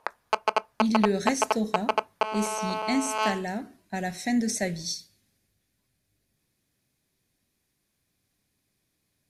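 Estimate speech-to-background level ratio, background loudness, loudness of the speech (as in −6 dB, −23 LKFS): −0.5 dB, −29.0 LKFS, −29.5 LKFS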